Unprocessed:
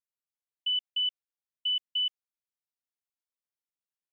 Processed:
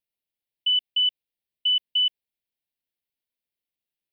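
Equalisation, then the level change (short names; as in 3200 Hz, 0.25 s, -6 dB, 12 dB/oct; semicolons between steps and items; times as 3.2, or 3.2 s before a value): fixed phaser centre 3000 Hz, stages 4; +7.0 dB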